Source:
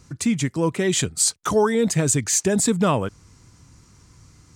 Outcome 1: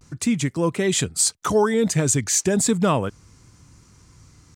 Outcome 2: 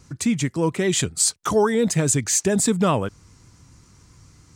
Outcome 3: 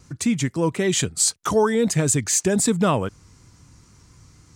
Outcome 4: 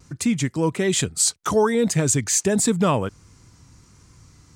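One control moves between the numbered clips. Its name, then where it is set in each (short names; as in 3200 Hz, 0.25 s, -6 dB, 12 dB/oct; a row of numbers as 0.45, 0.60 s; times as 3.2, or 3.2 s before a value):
vibrato, rate: 0.35, 7.3, 3.9, 1.3 Hz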